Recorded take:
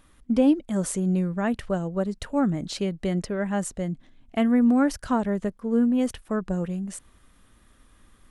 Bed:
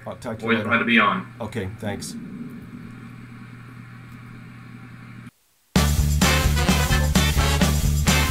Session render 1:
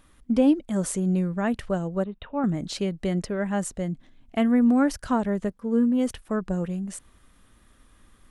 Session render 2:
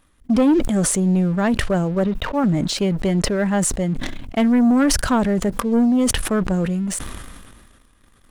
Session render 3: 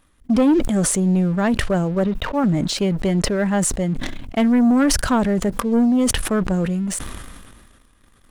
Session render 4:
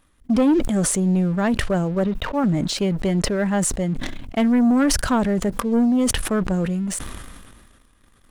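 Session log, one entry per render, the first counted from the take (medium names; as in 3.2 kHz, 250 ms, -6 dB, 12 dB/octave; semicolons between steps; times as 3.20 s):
2.04–2.44 s: rippled Chebyshev low-pass 3.8 kHz, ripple 6 dB; 5.51–6.07 s: comb of notches 360 Hz
waveshaping leveller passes 2; decay stretcher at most 32 dB/s
no audible change
trim -1.5 dB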